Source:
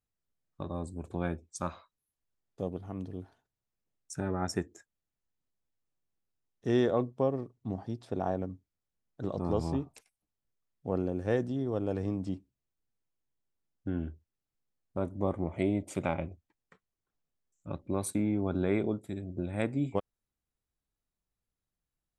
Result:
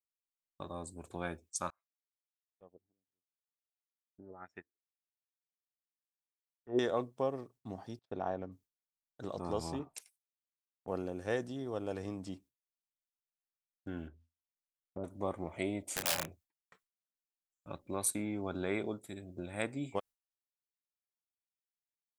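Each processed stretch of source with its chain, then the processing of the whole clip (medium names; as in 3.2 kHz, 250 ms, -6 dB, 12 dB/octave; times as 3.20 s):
1.70–6.79 s: LFO low-pass sine 1.5 Hz 310–2700 Hz + upward expansion 2.5:1, over -41 dBFS
7.99–8.52 s: gate -52 dBFS, range -30 dB + distance through air 170 m
9.79–10.88 s: bass shelf 140 Hz -8 dB + three bands expanded up and down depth 70%
14.07–15.04 s: de-hum 83.37 Hz, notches 3 + low-pass that closes with the level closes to 460 Hz, closed at -37 dBFS
15.90–16.31 s: high-pass 49 Hz + integer overflow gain 26 dB + doubling 31 ms -6.5 dB
whole clip: bass shelf 430 Hz -11.5 dB; gate with hold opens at -57 dBFS; treble shelf 5.9 kHz +8 dB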